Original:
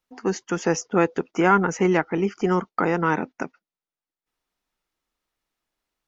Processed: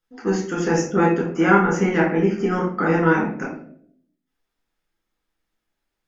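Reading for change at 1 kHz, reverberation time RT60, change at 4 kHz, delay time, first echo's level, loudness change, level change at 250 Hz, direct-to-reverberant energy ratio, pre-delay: +1.5 dB, 0.60 s, +0.5 dB, no echo audible, no echo audible, +3.0 dB, +4.0 dB, −5.0 dB, 10 ms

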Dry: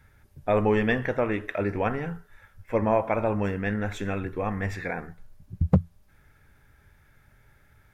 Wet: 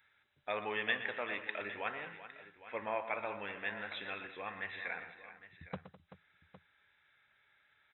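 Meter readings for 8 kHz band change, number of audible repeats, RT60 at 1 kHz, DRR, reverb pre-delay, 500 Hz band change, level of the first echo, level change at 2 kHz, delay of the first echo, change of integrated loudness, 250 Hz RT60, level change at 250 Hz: can't be measured, 4, no reverb audible, no reverb audible, no reverb audible, −16.0 dB, −12.5 dB, −5.0 dB, 120 ms, −12.5 dB, no reverb audible, −23.0 dB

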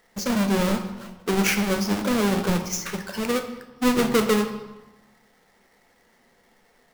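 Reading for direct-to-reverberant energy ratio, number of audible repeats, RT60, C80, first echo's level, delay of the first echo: 6.0 dB, no echo audible, 1.2 s, 11.0 dB, no echo audible, no echo audible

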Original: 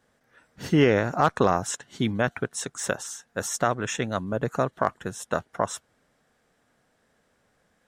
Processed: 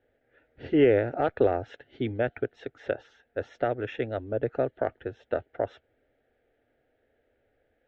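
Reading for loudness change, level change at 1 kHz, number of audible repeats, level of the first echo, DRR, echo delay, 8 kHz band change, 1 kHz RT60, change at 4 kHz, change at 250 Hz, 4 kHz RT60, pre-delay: −2.5 dB, −7.5 dB, no echo audible, no echo audible, no reverb audible, no echo audible, below −35 dB, no reverb audible, −11.0 dB, −3.0 dB, no reverb audible, no reverb audible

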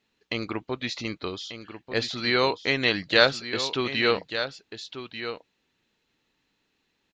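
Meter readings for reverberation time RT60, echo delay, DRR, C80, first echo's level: no reverb audible, 1,190 ms, no reverb audible, no reverb audible, −10.5 dB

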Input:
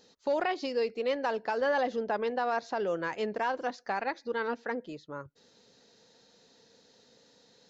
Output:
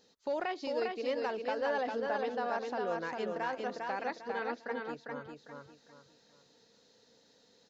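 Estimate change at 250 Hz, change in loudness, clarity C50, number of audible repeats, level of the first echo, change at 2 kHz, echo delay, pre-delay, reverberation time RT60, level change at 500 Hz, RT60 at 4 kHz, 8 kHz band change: −3.5 dB, −4.0 dB, no reverb audible, 4, −3.5 dB, −4.0 dB, 401 ms, no reverb audible, no reverb audible, −3.5 dB, no reverb audible, can't be measured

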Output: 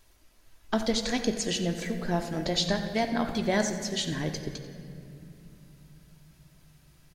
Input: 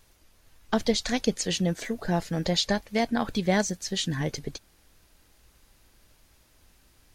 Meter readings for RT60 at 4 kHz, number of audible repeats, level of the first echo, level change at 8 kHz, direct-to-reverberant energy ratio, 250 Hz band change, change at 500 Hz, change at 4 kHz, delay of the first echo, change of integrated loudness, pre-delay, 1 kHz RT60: 1.7 s, 1, −13.5 dB, −1.5 dB, 4.5 dB, −1.5 dB, −1.5 dB, −1.5 dB, 90 ms, −1.5 dB, 3 ms, 2.2 s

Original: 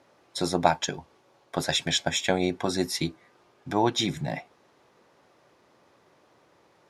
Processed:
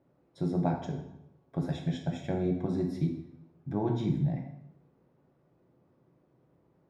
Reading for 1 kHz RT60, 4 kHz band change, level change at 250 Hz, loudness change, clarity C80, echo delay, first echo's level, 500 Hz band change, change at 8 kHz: 0.80 s, −23.0 dB, −1.0 dB, −5.0 dB, 9.0 dB, no echo audible, no echo audible, −7.0 dB, below −25 dB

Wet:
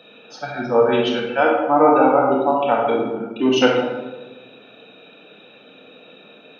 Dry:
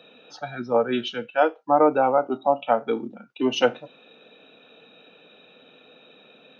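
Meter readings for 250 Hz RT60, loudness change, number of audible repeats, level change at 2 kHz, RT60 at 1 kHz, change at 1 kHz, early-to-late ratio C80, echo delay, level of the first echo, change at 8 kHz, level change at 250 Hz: 1.6 s, +5.5 dB, no echo audible, +6.5 dB, 1.1 s, +5.0 dB, 4.5 dB, no echo audible, no echo audible, can't be measured, +7.5 dB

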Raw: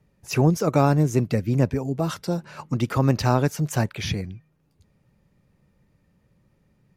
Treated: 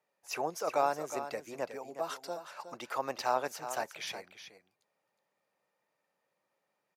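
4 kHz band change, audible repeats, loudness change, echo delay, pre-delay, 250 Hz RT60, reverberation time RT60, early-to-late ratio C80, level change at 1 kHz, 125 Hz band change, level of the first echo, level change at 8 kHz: −8.5 dB, 1, −13.0 dB, 365 ms, no reverb audible, no reverb audible, no reverb audible, no reverb audible, −5.0 dB, −36.0 dB, −10.5 dB, −8.5 dB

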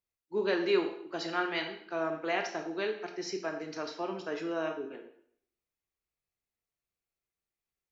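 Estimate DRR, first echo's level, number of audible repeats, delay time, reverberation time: 4.0 dB, no echo audible, no echo audible, no echo audible, 0.65 s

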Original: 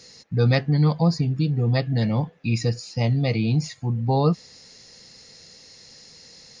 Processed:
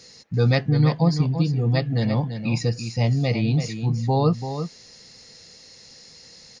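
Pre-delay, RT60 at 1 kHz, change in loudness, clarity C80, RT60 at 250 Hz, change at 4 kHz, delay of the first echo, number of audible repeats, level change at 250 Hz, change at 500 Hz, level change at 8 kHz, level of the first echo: no reverb audible, no reverb audible, +0.5 dB, no reverb audible, no reverb audible, +0.5 dB, 337 ms, 1, +0.5 dB, +0.5 dB, can't be measured, −9.0 dB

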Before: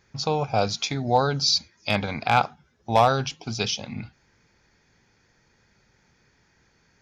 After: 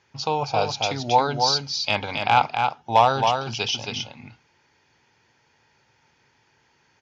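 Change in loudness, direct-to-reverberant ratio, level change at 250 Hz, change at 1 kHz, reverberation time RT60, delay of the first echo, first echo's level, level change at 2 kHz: +1.5 dB, no reverb audible, −3.0 dB, +4.0 dB, no reverb audible, 272 ms, −5.0 dB, +2.0 dB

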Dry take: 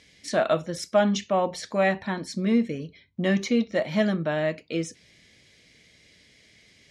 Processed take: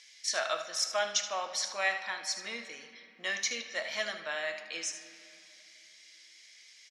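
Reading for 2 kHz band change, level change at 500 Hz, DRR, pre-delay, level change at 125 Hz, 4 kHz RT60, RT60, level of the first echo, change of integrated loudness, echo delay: −1.5 dB, −13.5 dB, 7.0 dB, 3 ms, below −30 dB, 1.7 s, 2.6 s, −11.5 dB, −7.5 dB, 76 ms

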